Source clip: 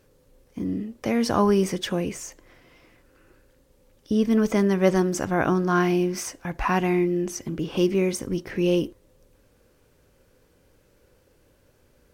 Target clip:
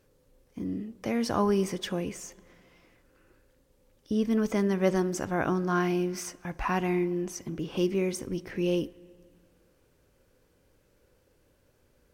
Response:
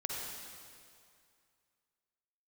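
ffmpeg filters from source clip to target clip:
-filter_complex "[0:a]asplit=2[link_01][link_02];[1:a]atrim=start_sample=2205,highshelf=frequency=4500:gain=-10.5,adelay=61[link_03];[link_02][link_03]afir=irnorm=-1:irlink=0,volume=-23dB[link_04];[link_01][link_04]amix=inputs=2:normalize=0,volume=-5.5dB"

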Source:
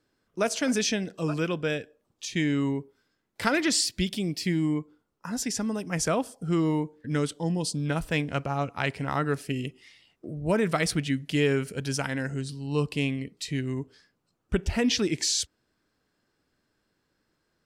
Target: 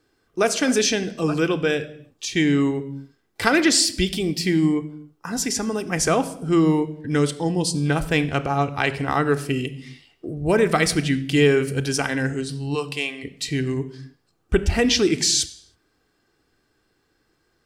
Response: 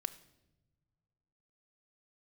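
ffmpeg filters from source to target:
-filter_complex "[0:a]asplit=3[link_01][link_02][link_03];[link_01]afade=type=out:start_time=12.74:duration=0.02[link_04];[link_02]highpass=610,afade=type=in:start_time=12.74:duration=0.02,afade=type=out:start_time=13.23:duration=0.02[link_05];[link_03]afade=type=in:start_time=13.23:duration=0.02[link_06];[link_04][link_05][link_06]amix=inputs=3:normalize=0[link_07];[1:a]atrim=start_sample=2205,afade=type=out:start_time=0.38:duration=0.01,atrim=end_sample=17199[link_08];[link_07][link_08]afir=irnorm=-1:irlink=0,volume=8dB"

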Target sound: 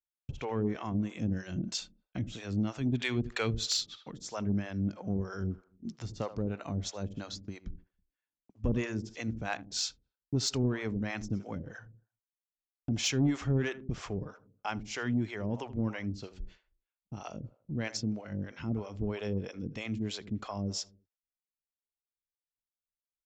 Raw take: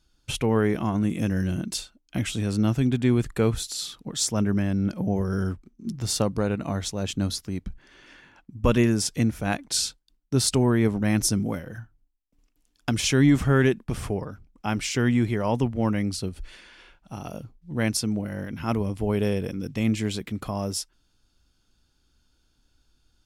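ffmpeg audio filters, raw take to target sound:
ffmpeg -i in.wav -filter_complex "[0:a]asplit=2[link_01][link_02];[link_02]acompressor=threshold=-36dB:ratio=6,volume=1dB[link_03];[link_01][link_03]amix=inputs=2:normalize=0,aresample=16000,aresample=44100,agate=range=-41dB:threshold=-36dB:ratio=16:detection=peak,asplit=2[link_04][link_05];[link_05]adelay=80,lowpass=frequency=1500:poles=1,volume=-14.5dB,asplit=2[link_06][link_07];[link_07]adelay=80,lowpass=frequency=1500:poles=1,volume=0.43,asplit=2[link_08][link_09];[link_09]adelay=80,lowpass=frequency=1500:poles=1,volume=0.43,asplit=2[link_10][link_11];[link_11]adelay=80,lowpass=frequency=1500:poles=1,volume=0.43[link_12];[link_06][link_08][link_10][link_12]amix=inputs=4:normalize=0[link_13];[link_04][link_13]amix=inputs=2:normalize=0,acrossover=split=470[link_14][link_15];[link_14]aeval=exprs='val(0)*(1-1/2+1/2*cos(2*PI*3.1*n/s))':channel_layout=same[link_16];[link_15]aeval=exprs='val(0)*(1-1/2-1/2*cos(2*PI*3.1*n/s))':channel_layout=same[link_17];[link_16][link_17]amix=inputs=2:normalize=0,asplit=3[link_18][link_19][link_20];[link_18]afade=type=out:start_time=2.93:duration=0.02[link_21];[link_19]equalizer=frequency=3400:width_type=o:width=2.7:gain=11,afade=type=in:start_time=2.93:duration=0.02,afade=type=out:start_time=4.1:duration=0.02[link_22];[link_20]afade=type=in:start_time=4.1:duration=0.02[link_23];[link_21][link_22][link_23]amix=inputs=3:normalize=0,asoftclip=type=tanh:threshold=-12.5dB,volume=-6dB" out.wav

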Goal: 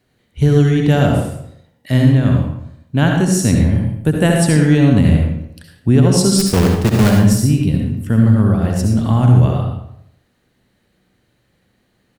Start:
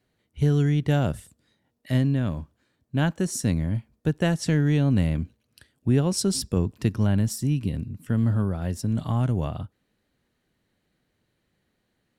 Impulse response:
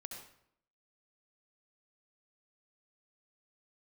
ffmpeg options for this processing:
-filter_complex "[0:a]asplit=3[link_01][link_02][link_03];[link_01]afade=type=out:start_time=3.77:duration=0.02[link_04];[link_02]highshelf=frequency=7400:width_type=q:width=3:gain=6,afade=type=in:start_time=3.77:duration=0.02,afade=type=out:start_time=4.43:duration=0.02[link_05];[link_03]afade=type=in:start_time=4.43:duration=0.02[link_06];[link_04][link_05][link_06]amix=inputs=3:normalize=0,asplit=3[link_07][link_08][link_09];[link_07]afade=type=out:start_time=6.38:duration=0.02[link_10];[link_08]acrusher=bits=5:dc=4:mix=0:aa=0.000001,afade=type=in:start_time=6.38:duration=0.02,afade=type=out:start_time=7.09:duration=0.02[link_11];[link_09]afade=type=in:start_time=7.09:duration=0.02[link_12];[link_10][link_11][link_12]amix=inputs=3:normalize=0,asplit=2[link_13][link_14];[link_14]adelay=80,lowpass=frequency=2000:poles=1,volume=-13.5dB,asplit=2[link_15][link_16];[link_16]adelay=80,lowpass=frequency=2000:poles=1,volume=0.49,asplit=2[link_17][link_18];[link_18]adelay=80,lowpass=frequency=2000:poles=1,volume=0.49,asplit=2[link_19][link_20];[link_20]adelay=80,lowpass=frequency=2000:poles=1,volume=0.49,asplit=2[link_21][link_22];[link_22]adelay=80,lowpass=frequency=2000:poles=1,volume=0.49[link_23];[link_13][link_15][link_17][link_19][link_21][link_23]amix=inputs=6:normalize=0[link_24];[1:a]atrim=start_sample=2205[link_25];[link_24][link_25]afir=irnorm=-1:irlink=0,alimiter=level_in=15.5dB:limit=-1dB:release=50:level=0:latency=1,volume=-1dB"

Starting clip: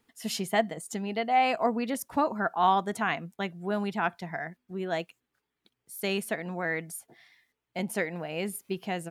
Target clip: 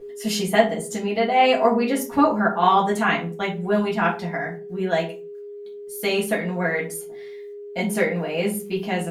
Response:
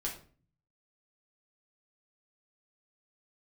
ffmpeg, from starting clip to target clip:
-filter_complex "[0:a]aeval=exprs='val(0)+0.00631*sin(2*PI*410*n/s)':channel_layout=same[link_01];[1:a]atrim=start_sample=2205,afade=type=out:start_time=0.45:duration=0.01,atrim=end_sample=20286,asetrate=61740,aresample=44100[link_02];[link_01][link_02]afir=irnorm=-1:irlink=0,volume=9dB"

